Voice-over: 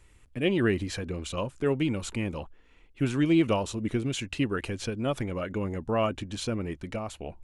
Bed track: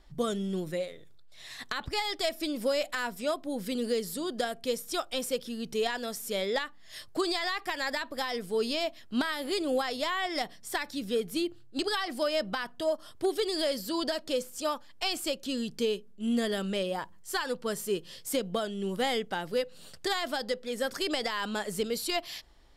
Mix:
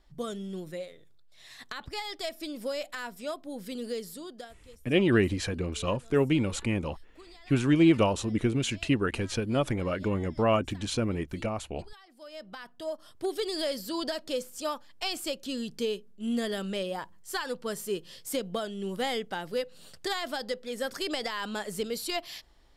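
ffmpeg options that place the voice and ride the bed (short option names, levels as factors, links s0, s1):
-filter_complex "[0:a]adelay=4500,volume=1.26[s0];[1:a]volume=6.68,afade=t=out:st=4.03:d=0.57:silence=0.125893,afade=t=in:st=12.16:d=1.33:silence=0.0841395[s1];[s0][s1]amix=inputs=2:normalize=0"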